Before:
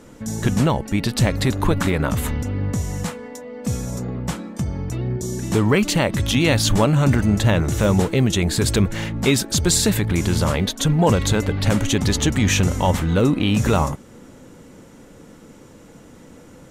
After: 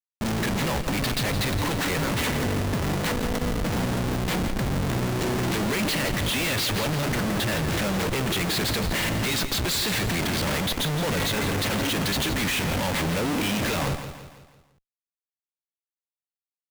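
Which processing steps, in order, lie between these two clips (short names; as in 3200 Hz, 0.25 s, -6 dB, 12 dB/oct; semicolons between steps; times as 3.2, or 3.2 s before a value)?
HPF 190 Hz 6 dB/oct; band shelf 2800 Hz +11 dB; in parallel at -0.5 dB: compressor 6:1, threshold -25 dBFS, peak gain reduction 17 dB; on the sum: flange 1.4 Hz, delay 4.9 ms, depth 2.8 ms, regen +78%; Schmitt trigger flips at -28 dBFS; on a send: feedback echo 0.167 s, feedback 46%, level -10 dB; on the sum: gain -3.5 dB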